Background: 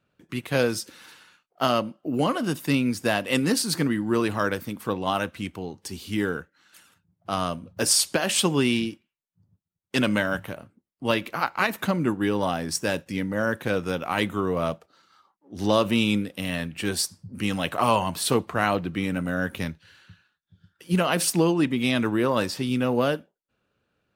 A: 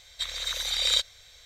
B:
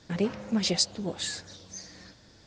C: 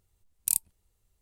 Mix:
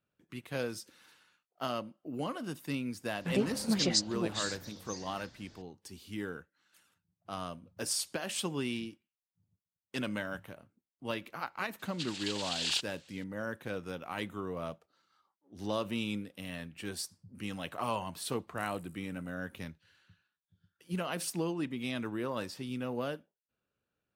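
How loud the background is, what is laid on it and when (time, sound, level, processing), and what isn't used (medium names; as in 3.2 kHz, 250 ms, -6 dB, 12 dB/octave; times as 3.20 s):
background -13 dB
3.16 s: add B -3 dB
11.79 s: add A -8 dB + noise-vocoded speech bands 8
18.10 s: add C -15 dB + feedback comb 60 Hz, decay 1.9 s, mix 90%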